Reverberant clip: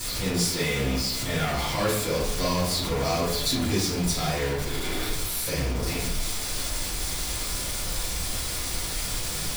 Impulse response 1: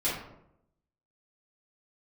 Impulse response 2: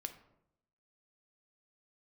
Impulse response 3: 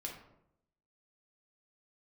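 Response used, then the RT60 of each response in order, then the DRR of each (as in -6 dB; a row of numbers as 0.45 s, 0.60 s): 1; 0.80 s, 0.80 s, 0.80 s; -10.5 dB, 7.5 dB, -1.0 dB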